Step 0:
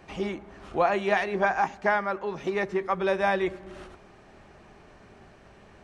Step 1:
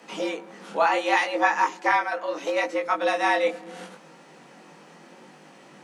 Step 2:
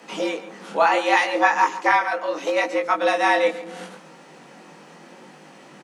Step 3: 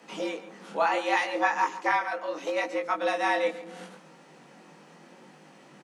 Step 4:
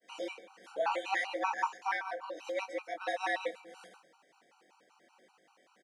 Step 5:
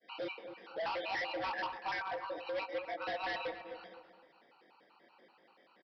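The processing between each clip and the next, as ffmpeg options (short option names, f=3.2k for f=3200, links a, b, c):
-af "afreqshift=140,highshelf=f=4.3k:g=11,flanger=delay=18.5:depth=6.7:speed=0.72,volume=5dB"
-af "aecho=1:1:140:0.168,volume=3.5dB"
-af "lowshelf=f=110:g=8,volume=-7.5dB"
-af "highpass=430,agate=range=-33dB:threshold=-50dB:ratio=3:detection=peak,afftfilt=real='re*gt(sin(2*PI*5.2*pts/sr)*(1-2*mod(floor(b*sr/1024/770),2)),0)':imag='im*gt(sin(2*PI*5.2*pts/sr)*(1-2*mod(floor(b*sr/1024/770),2)),0)':win_size=1024:overlap=0.75,volume=-4dB"
-filter_complex "[0:a]aresample=11025,asoftclip=type=hard:threshold=-36dB,aresample=44100,asplit=2[a][b];[b]adelay=256,lowpass=f=1.1k:p=1,volume=-8dB,asplit=2[c][d];[d]adelay=256,lowpass=f=1.1k:p=1,volume=0.34,asplit=2[e][f];[f]adelay=256,lowpass=f=1.1k:p=1,volume=0.34,asplit=2[g][h];[h]adelay=256,lowpass=f=1.1k:p=1,volume=0.34[i];[a][c][e][g][i]amix=inputs=5:normalize=0,volume=1dB"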